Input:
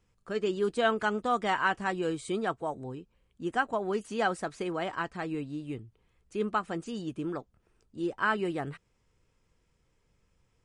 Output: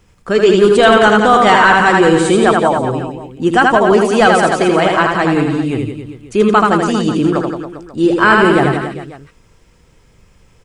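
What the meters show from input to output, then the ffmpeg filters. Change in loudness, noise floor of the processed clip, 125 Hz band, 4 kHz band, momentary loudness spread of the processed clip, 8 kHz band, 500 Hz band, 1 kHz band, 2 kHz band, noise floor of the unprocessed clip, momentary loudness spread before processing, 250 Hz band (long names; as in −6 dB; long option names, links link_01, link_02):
+20.5 dB, −50 dBFS, +21.5 dB, +21.0 dB, 13 LU, +21.5 dB, +21.0 dB, +20.0 dB, +20.0 dB, −73 dBFS, 13 LU, +21.0 dB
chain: -af "aecho=1:1:80|172|277.8|399.5|539.4:0.631|0.398|0.251|0.158|0.1,apsyclip=21.5dB,volume=-2dB"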